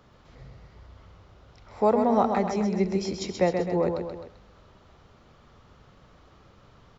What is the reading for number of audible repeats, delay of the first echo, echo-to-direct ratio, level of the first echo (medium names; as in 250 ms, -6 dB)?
3, 130 ms, -4.5 dB, -6.0 dB